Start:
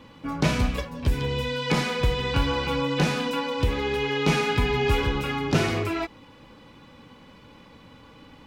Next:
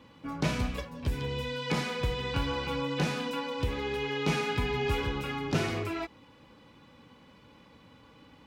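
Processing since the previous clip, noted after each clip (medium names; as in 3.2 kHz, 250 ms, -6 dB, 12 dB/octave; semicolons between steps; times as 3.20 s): high-pass 45 Hz; trim -6.5 dB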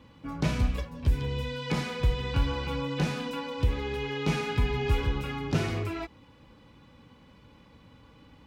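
bass shelf 110 Hz +12 dB; trim -1.5 dB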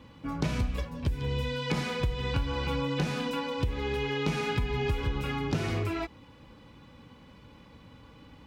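compression 12:1, threshold -27 dBFS, peak gain reduction 10 dB; trim +2.5 dB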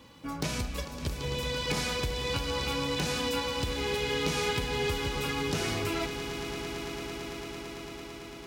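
tone controls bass -6 dB, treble +11 dB; echo with a slow build-up 112 ms, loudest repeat 8, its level -15 dB; hard clipper -21 dBFS, distortion -26 dB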